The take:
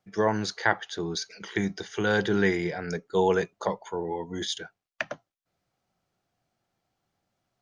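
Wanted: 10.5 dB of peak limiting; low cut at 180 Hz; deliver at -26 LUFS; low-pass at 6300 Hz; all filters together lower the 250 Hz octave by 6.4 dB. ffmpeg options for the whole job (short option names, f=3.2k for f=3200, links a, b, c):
-af "highpass=180,lowpass=6.3k,equalizer=f=250:t=o:g=-8,volume=7dB,alimiter=limit=-12.5dB:level=0:latency=1"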